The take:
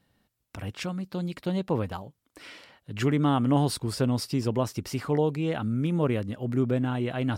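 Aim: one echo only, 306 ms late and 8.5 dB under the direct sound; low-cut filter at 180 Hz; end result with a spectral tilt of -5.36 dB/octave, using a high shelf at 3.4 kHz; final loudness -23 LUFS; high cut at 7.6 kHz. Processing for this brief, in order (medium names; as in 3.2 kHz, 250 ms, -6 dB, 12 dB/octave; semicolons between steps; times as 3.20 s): high-pass 180 Hz; low-pass 7.6 kHz; treble shelf 3.4 kHz +4 dB; delay 306 ms -8.5 dB; trim +5.5 dB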